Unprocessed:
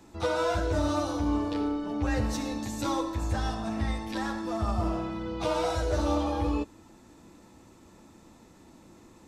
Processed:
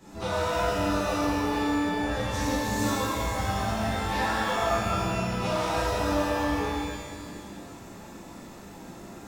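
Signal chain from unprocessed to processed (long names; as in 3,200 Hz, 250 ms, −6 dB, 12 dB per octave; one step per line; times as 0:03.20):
0:04.08–0:04.69: parametric band 1,100 Hz +8 dB 3 octaves
downward compressor, threshold −33 dBFS, peak gain reduction 11 dB
reverb with rising layers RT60 1.9 s, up +12 semitones, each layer −8 dB, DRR −12 dB
level −2.5 dB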